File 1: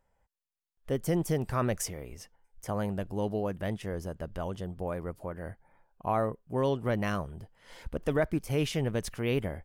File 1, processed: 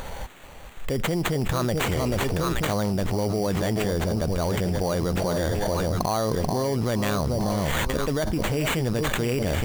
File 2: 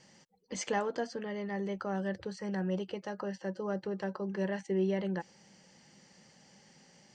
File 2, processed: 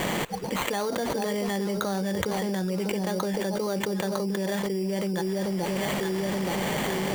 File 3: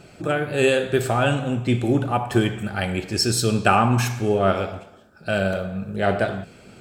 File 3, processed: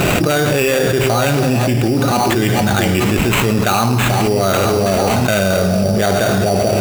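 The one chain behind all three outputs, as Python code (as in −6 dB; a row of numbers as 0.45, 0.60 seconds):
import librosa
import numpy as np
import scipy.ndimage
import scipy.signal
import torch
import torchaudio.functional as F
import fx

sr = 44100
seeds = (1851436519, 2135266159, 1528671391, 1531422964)

y = fx.high_shelf(x, sr, hz=7400.0, db=8.5)
y = fx.echo_alternate(y, sr, ms=436, hz=940.0, feedback_pct=54, wet_db=-9.5)
y = fx.sample_hold(y, sr, seeds[0], rate_hz=5200.0, jitter_pct=0)
y = fx.env_flatten(y, sr, amount_pct=100)
y = y * librosa.db_to_amplitude(-1.0)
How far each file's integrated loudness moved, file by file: +7.0, +7.5, +7.0 LU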